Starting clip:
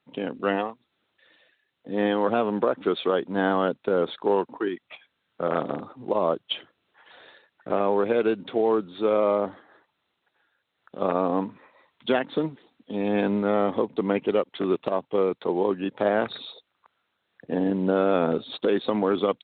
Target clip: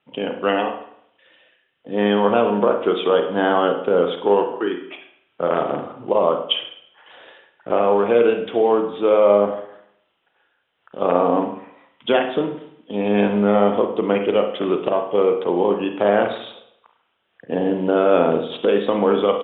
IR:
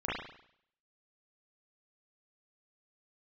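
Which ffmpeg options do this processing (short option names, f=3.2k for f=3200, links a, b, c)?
-filter_complex "[0:a]firequalizer=gain_entry='entry(260,0);entry(490,4);entry(1900,1);entry(3100,8);entry(4500,-19)':delay=0.05:min_phase=1,asplit=2[a][b];[1:a]atrim=start_sample=2205[c];[b][c]afir=irnorm=-1:irlink=0,volume=-9.5dB[d];[a][d]amix=inputs=2:normalize=0"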